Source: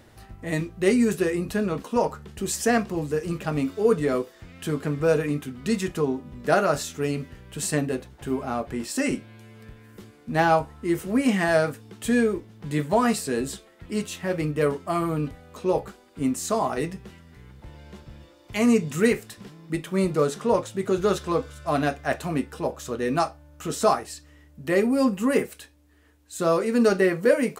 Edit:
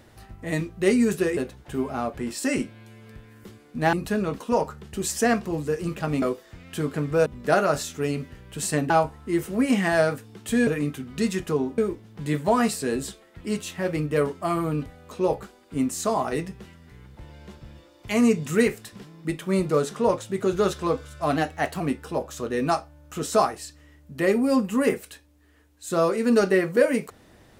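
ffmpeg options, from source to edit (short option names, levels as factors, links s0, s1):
-filter_complex "[0:a]asplit=10[s0][s1][s2][s3][s4][s5][s6][s7][s8][s9];[s0]atrim=end=1.372[s10];[s1]atrim=start=7.898:end=10.462[s11];[s2]atrim=start=1.368:end=3.662[s12];[s3]atrim=start=4.108:end=5.152[s13];[s4]atrim=start=6.258:end=7.902[s14];[s5]atrim=start=10.458:end=12.232[s15];[s6]atrim=start=5.148:end=6.262[s16];[s7]atrim=start=12.228:end=21.814[s17];[s8]atrim=start=21.81:end=22.29,asetpts=PTS-STARTPTS,asetrate=47628,aresample=44100[s18];[s9]atrim=start=22.286[s19];[s10][s11]acrossfade=d=0.004:c1=hsin:c2=hsin[s20];[s20][s12]acrossfade=d=0.004:c1=hsin:c2=hsin[s21];[s21][s13]acrossfade=d=0.004:c1=hsin:c2=hsin[s22];[s22][s14]acrossfade=d=0.004:c1=hsin:c2=hsin[s23];[s23][s15]acrossfade=d=0.004:c1=hsin:c2=hsin[s24];[s24][s16]acrossfade=d=0.004:c1=hsin:c2=hsin[s25];[s25][s17]acrossfade=d=0.004:c1=hsin:c2=hsin[s26];[s26][s18]acrossfade=d=0.004:c1=hsin:c2=hsin[s27];[s27][s19]acrossfade=d=0.004:c1=hsin:c2=hsin"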